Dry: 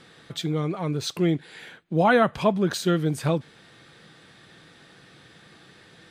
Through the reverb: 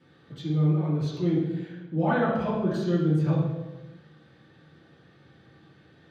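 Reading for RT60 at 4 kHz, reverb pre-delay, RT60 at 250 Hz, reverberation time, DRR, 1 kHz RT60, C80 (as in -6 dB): 0.80 s, 3 ms, n/a, 1.1 s, -11.0 dB, 1.0 s, 3.5 dB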